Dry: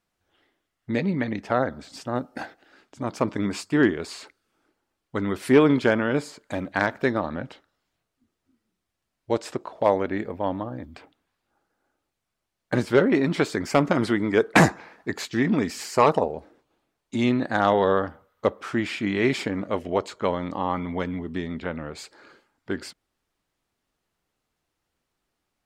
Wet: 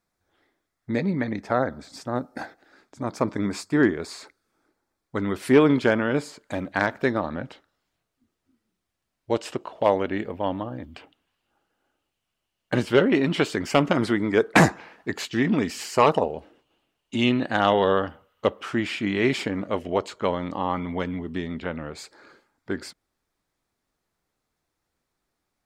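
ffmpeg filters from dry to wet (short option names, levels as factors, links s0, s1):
-af "asetnsamples=n=441:p=0,asendcmd='5.17 equalizer g 0;9.35 equalizer g 11;13.93 equalizer g 0;14.73 equalizer g 7.5;16.25 equalizer g 14;18.65 equalizer g 3.5;21.95 equalizer g -6.5',equalizer=f=2900:t=o:w=0.28:g=-11.5"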